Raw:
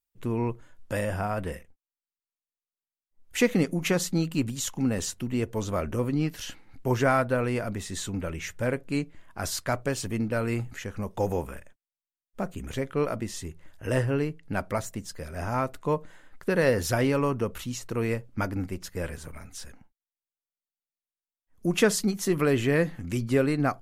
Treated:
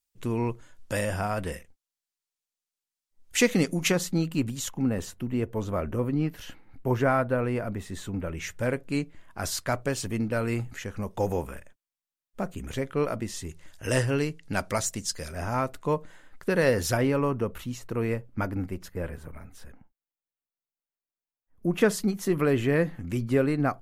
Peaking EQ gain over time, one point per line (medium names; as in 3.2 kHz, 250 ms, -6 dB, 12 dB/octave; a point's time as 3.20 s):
peaking EQ 6.3 kHz 2.2 oct
+7 dB
from 3.92 s -2.5 dB
from 4.69 s -10 dB
from 8.37 s +0.5 dB
from 13.49 s +11.5 dB
from 15.32 s +1.5 dB
from 16.97 s -7 dB
from 18.92 s -14 dB
from 21.81 s -6 dB